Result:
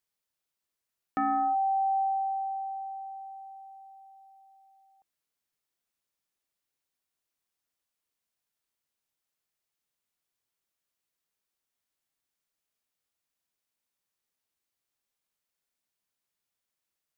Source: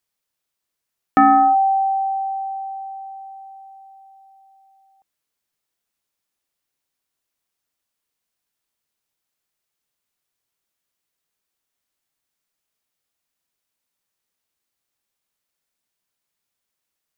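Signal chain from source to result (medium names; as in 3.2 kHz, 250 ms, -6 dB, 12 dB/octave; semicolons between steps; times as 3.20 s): peak limiter -17.5 dBFS, peak gain reduction 10.5 dB; trim -6 dB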